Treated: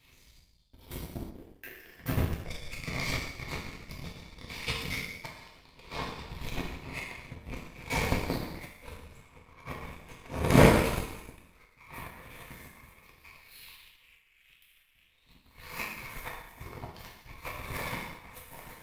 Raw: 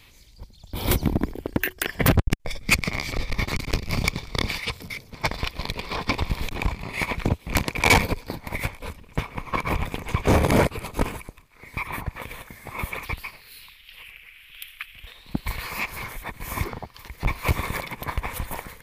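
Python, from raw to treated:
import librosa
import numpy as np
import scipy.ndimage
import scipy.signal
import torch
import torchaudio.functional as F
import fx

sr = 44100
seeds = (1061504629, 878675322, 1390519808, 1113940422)

y = fx.auto_swell(x, sr, attack_ms=525.0)
y = fx.rev_gated(y, sr, seeds[0], gate_ms=380, shape='falling', drr_db=-5.5)
y = fx.power_curve(y, sr, exponent=1.4)
y = y * 10.0 ** (2.5 / 20.0)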